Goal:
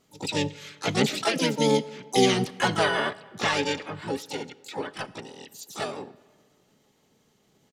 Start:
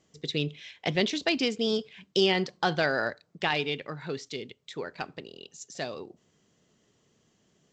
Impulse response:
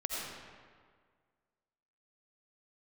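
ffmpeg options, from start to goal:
-filter_complex "[0:a]aecho=1:1:4.7:0.8,asplit=4[a][b][c][d];[b]asetrate=29433,aresample=44100,atempo=1.49831,volume=-4dB[e];[c]asetrate=55563,aresample=44100,atempo=0.793701,volume=-6dB[f];[d]asetrate=88200,aresample=44100,atempo=0.5,volume=-5dB[g];[a][e][f][g]amix=inputs=4:normalize=0,asplit=2[h][i];[1:a]atrim=start_sample=2205[j];[i][j]afir=irnorm=-1:irlink=0,volume=-22.5dB[k];[h][k]amix=inputs=2:normalize=0,volume=-3dB"

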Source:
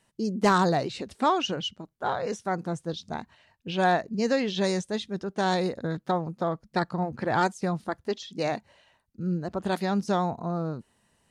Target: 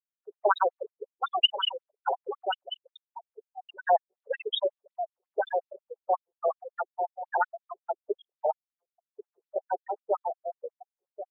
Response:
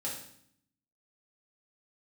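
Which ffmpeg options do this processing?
-af "aecho=1:1:1080:0.335,aexciter=amount=1.8:drive=3.9:freq=2.6k,afftfilt=real='re*gte(hypot(re,im),0.126)':imag='im*gte(hypot(re,im),0.126)':win_size=1024:overlap=0.75,adynamicequalizer=threshold=0.00501:dfrequency=3800:dqfactor=1.7:tfrequency=3800:tqfactor=1.7:attack=5:release=100:ratio=0.375:range=2:mode=boostabove:tftype=bell,afftfilt=real='re*between(b*sr/1024,540*pow(4800/540,0.5+0.5*sin(2*PI*5.5*pts/sr))/1.41,540*pow(4800/540,0.5+0.5*sin(2*PI*5.5*pts/sr))*1.41)':imag='im*between(b*sr/1024,540*pow(4800/540,0.5+0.5*sin(2*PI*5.5*pts/sr))/1.41,540*pow(4800/540,0.5+0.5*sin(2*PI*5.5*pts/sr))*1.41)':win_size=1024:overlap=0.75,volume=4.5dB"

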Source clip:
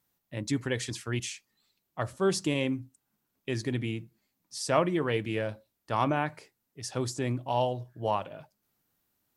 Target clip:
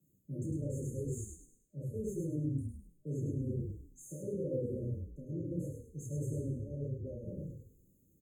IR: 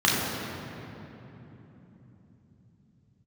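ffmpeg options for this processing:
-filter_complex "[0:a]asetrate=50274,aresample=44100,acrossover=split=200|4000[a][b][c];[c]asoftclip=type=tanh:threshold=-34dB[d];[a][b][d]amix=inputs=3:normalize=0[e];[1:a]atrim=start_sample=2205,atrim=end_sample=3528[f];[e][f]afir=irnorm=-1:irlink=0,dynaudnorm=f=250:g=17:m=11.5dB,flanger=delay=5.1:depth=9.1:regen=-58:speed=1.6:shape=triangular,alimiter=limit=-14.5dB:level=0:latency=1:release=84,areverse,acompressor=threshold=-37dB:ratio=6,areverse,afftfilt=real='re*(1-between(b*sr/4096,610,6300))':imag='im*(1-between(b*sr/4096,610,6300))':win_size=4096:overlap=0.75,adynamicequalizer=threshold=0.00126:dfrequency=640:dqfactor=0.99:tfrequency=640:tqfactor=0.99:attack=5:release=100:ratio=0.375:range=3.5:mode=boostabove:tftype=bell,aphaser=in_gain=1:out_gain=1:delay=2.6:decay=0.21:speed=0.36:type=triangular,lowshelf=f=170:g=4,asplit=6[g][h][i][j][k][l];[h]adelay=103,afreqshift=-33,volume=-4.5dB[m];[i]adelay=206,afreqshift=-66,volume=-13.4dB[n];[j]adelay=309,afreqshift=-99,volume=-22.2dB[o];[k]adelay=412,afreqshift=-132,volume=-31.1dB[p];[l]adelay=515,afreqshift=-165,volume=-40dB[q];[g][m][n][o][p][q]amix=inputs=6:normalize=0,volume=-2dB"

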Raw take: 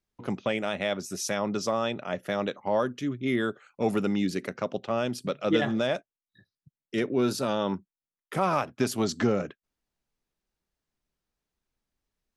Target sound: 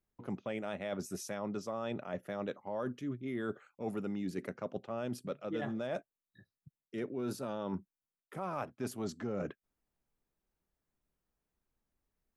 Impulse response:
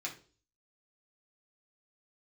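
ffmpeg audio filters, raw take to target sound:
-af "equalizer=f=4.4k:t=o:w=2.1:g=-8.5,areverse,acompressor=threshold=-35dB:ratio=6,areverse"

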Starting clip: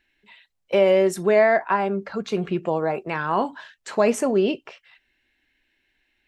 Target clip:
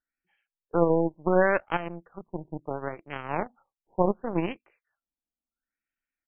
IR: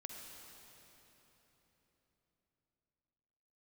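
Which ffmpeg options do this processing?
-af "asetrate=38170,aresample=44100,atempo=1.15535,aeval=exprs='0.473*(cos(1*acos(clip(val(0)/0.473,-1,1)))-cos(1*PI/2))+0.075*(cos(2*acos(clip(val(0)/0.473,-1,1)))-cos(2*PI/2))+0.106*(cos(3*acos(clip(val(0)/0.473,-1,1)))-cos(3*PI/2))+0.0168*(cos(7*acos(clip(val(0)/0.473,-1,1)))-cos(7*PI/2))':c=same,afftfilt=real='re*lt(b*sr/1024,980*pow(3300/980,0.5+0.5*sin(2*PI*0.71*pts/sr)))':imag='im*lt(b*sr/1024,980*pow(3300/980,0.5+0.5*sin(2*PI*0.71*pts/sr)))':win_size=1024:overlap=0.75,volume=-1.5dB"

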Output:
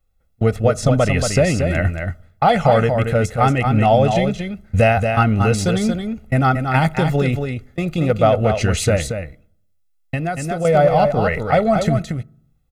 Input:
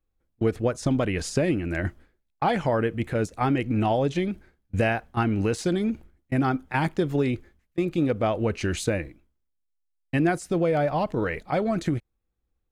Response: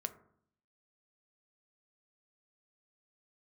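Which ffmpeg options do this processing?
-filter_complex "[0:a]aecho=1:1:1.5:0.69,aecho=1:1:230:0.501,asettb=1/sr,asplit=3[a][b][c];[a]atrim=end=9.034[d];[b]atrim=start=9.03:end=10.65,asetpts=PTS-STARTPTS,afade=t=in:d=0.004:c=qsin,afade=t=out:st=1.616:d=0.004:c=qsin,acompressor=threshold=-26dB:ratio=10[e];[c]atrim=start=10.646[f];[d][e]acrossfade=d=0.004:c1=hsin:c2=qsin[g];[g][f]acrossfade=d=0.004:c1=qsin:c2=hsin,asplit=2[h][i];[1:a]atrim=start_sample=2205,highshelf=f=8.4k:g=10[j];[i][j]afir=irnorm=-1:irlink=0,volume=-11dB[k];[h][k]amix=inputs=2:normalize=0,volume=5dB"

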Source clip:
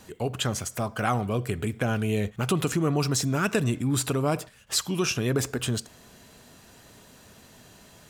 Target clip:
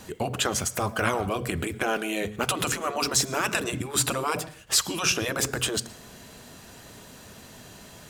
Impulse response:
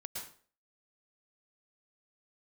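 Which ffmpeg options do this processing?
-filter_complex "[0:a]asplit=2[a][b];[1:a]atrim=start_sample=2205,afade=t=out:st=0.42:d=0.01,atrim=end_sample=18963,lowshelf=f=67:g=-10.5[c];[b][c]afir=irnorm=-1:irlink=0,volume=-17.5dB[d];[a][d]amix=inputs=2:normalize=0,afftfilt=real='re*lt(hypot(re,im),0.251)':imag='im*lt(hypot(re,im),0.251)':win_size=1024:overlap=0.75,acontrast=72,volume=-2dB"

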